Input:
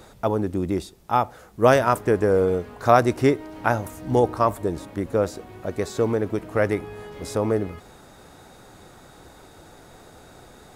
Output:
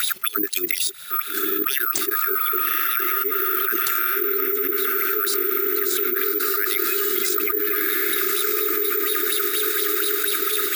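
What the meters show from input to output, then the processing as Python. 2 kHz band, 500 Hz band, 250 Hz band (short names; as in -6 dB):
+6.5 dB, -5.0 dB, -5.5 dB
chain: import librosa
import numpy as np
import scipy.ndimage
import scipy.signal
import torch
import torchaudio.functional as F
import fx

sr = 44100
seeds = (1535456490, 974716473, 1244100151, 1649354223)

p1 = fx.weighting(x, sr, curve='A')
p2 = fx.dereverb_blind(p1, sr, rt60_s=1.2)
p3 = fx.dynamic_eq(p2, sr, hz=770.0, q=0.83, threshold_db=-31.0, ratio=4.0, max_db=5)
p4 = fx.level_steps(p3, sr, step_db=11)
p5 = fx.auto_swell(p4, sr, attack_ms=111.0)
p6 = fx.filter_lfo_highpass(p5, sr, shape='sine', hz=4.2, low_hz=380.0, high_hz=4100.0, q=5.6)
p7 = fx.brickwall_bandstop(p6, sr, low_hz=420.0, high_hz=1200.0)
p8 = p7 + fx.echo_diffused(p7, sr, ms=1227, feedback_pct=41, wet_db=-8, dry=0)
p9 = (np.kron(p8[::3], np.eye(3)[0]) * 3)[:len(p8)]
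p10 = fx.env_flatten(p9, sr, amount_pct=100)
y = p10 * librosa.db_to_amplitude(-14.5)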